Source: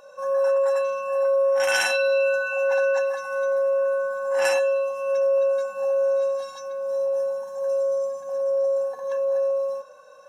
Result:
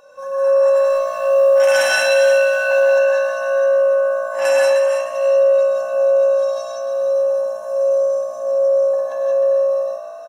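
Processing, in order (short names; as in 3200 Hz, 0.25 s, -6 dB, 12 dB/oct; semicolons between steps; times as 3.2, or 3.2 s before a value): 0.73–2.83 G.711 law mismatch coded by mu; frequency-shifting echo 0.306 s, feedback 33%, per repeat +61 Hz, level -8 dB; non-linear reverb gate 0.21 s rising, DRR -1.5 dB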